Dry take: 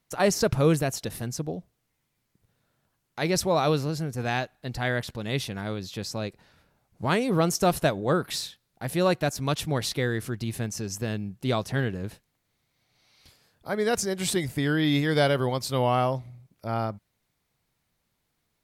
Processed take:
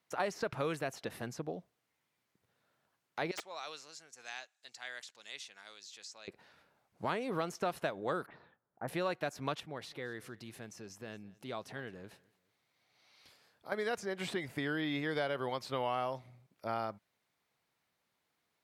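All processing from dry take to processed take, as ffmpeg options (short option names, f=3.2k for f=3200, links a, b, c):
-filter_complex "[0:a]asettb=1/sr,asplit=3[a][b][c];[a]atrim=end=3.314[d];[b]atrim=start=3.31:end=6.28,asetpts=PTS-STARTPTS,afade=t=in:d=0.004:c=qsin,afade=t=out:st=2.966:d=0.004:c=qsin,lowpass=f=7.1k:t=q:w=3,aderivative,aeval=exprs='(mod(6.68*val(0)+1,2)-1)/6.68':c=same[e];[c]atrim=start=6.276[f];[d][e]acrossfade=d=0.004:c1=hsin:c2=qsin[g];[g][f]acrossfade=d=0.004:c1=qsin:c2=hsin,asettb=1/sr,asplit=3[h][i][j];[h]atrim=end=8.264[k];[i]atrim=start=8.26:end=8.88,asetpts=PTS-STARTPTS,afade=t=in:d=0.004:c=qsin,afade=t=out:st=0.616:d=0.004:c=qsin,lowpass=f=1.4k:w=0.5412,lowpass=f=1.4k:w=1.3066,bandreject=f=1.1k:w=26[l];[j]atrim=start=8.876[m];[k][l]acrossfade=d=0.004:c1=hsin:c2=qsin[n];[n][m]acrossfade=d=0.004:c1=qsin:c2=hsin,asettb=1/sr,asplit=3[o][p][q];[o]atrim=end=9.604[r];[p]atrim=start=9.6:end=13.72,asetpts=PTS-STARTPTS,afade=t=in:d=0.004:c=qsin,afade=t=out:st=4.116:d=0.004:c=qsin,acompressor=threshold=-52dB:ratio=1.5:attack=3.2:release=140:knee=1:detection=peak,aecho=1:1:215|430:0.0708|0.0234,atrim=end_sample=181692[s];[q]atrim=start=13.716[t];[r][s]acrossfade=d=0.004:c1=hsin:c2=qsin[u];[u][t]acrossfade=d=0.004:c1=qsin:c2=hsin,highpass=f=530:p=1,highshelf=f=4.6k:g=-9,acrossover=split=1100|3100[v][w][x];[v]acompressor=threshold=-35dB:ratio=4[y];[w]acompressor=threshold=-41dB:ratio=4[z];[x]acompressor=threshold=-53dB:ratio=4[aa];[y][z][aa]amix=inputs=3:normalize=0"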